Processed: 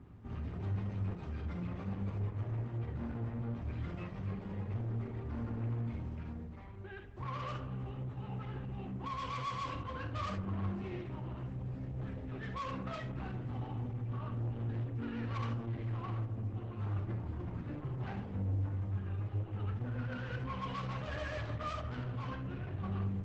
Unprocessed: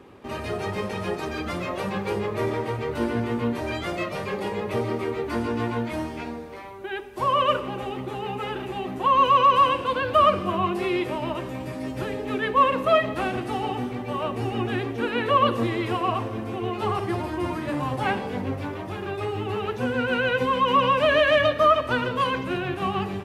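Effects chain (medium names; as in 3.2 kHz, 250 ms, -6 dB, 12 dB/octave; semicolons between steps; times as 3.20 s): FFT filter 130 Hz 0 dB, 480 Hz -23 dB, 1.3 kHz -17 dB, 9.1 kHz -30 dB; reverse; upward compressor, threshold -48 dBFS; reverse; saturation -39 dBFS, distortion -8 dB; band-passed feedback delay 219 ms, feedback 83%, band-pass 530 Hz, level -22 dB; reverberation, pre-delay 3 ms, DRR 3.5 dB; trim +2 dB; Opus 12 kbps 48 kHz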